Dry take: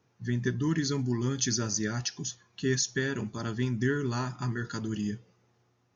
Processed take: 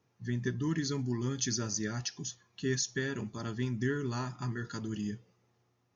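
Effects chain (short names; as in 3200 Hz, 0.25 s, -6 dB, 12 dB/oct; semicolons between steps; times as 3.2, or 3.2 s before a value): notch 1500 Hz, Q 20; gain -4 dB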